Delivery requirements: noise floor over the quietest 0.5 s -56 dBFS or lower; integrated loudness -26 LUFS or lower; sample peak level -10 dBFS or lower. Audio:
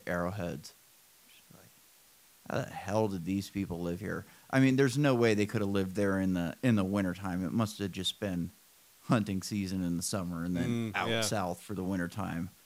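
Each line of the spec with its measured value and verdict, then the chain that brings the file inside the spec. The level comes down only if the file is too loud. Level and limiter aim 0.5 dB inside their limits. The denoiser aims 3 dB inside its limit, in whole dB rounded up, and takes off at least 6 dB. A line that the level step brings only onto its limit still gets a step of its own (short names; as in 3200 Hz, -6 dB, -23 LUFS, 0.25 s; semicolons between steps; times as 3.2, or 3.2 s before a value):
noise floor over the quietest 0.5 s -61 dBFS: OK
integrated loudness -32.5 LUFS: OK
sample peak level -13.0 dBFS: OK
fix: none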